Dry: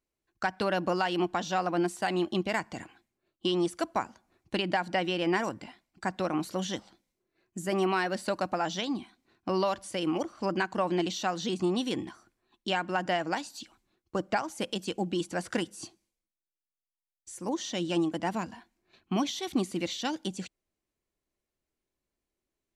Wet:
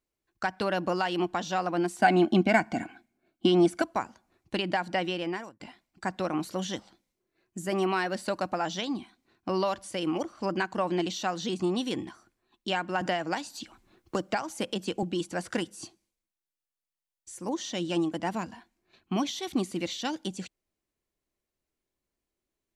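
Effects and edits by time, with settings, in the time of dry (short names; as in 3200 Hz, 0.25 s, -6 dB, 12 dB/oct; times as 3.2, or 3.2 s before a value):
1.99–3.82 small resonant body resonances 250/700/1500/2200 Hz, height 13 dB, ringing for 25 ms
5.05–5.6 fade out
13.01–15.03 three-band squash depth 70%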